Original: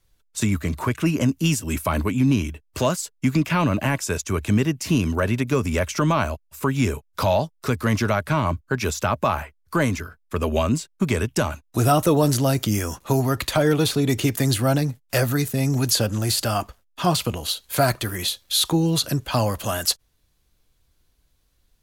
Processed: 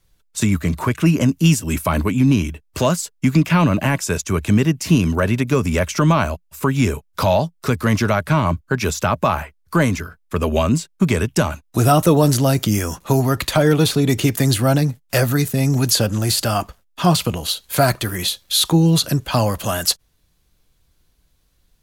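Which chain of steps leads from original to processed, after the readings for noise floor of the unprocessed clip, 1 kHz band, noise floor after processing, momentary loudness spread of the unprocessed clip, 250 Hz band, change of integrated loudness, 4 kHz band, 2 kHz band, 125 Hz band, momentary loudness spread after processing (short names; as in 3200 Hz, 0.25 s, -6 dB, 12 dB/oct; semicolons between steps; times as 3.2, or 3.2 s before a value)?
-65 dBFS, +3.5 dB, -61 dBFS, 6 LU, +4.5 dB, +4.5 dB, +3.5 dB, +3.5 dB, +5.0 dB, 6 LU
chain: bell 170 Hz +5 dB 0.31 oct; gain +3.5 dB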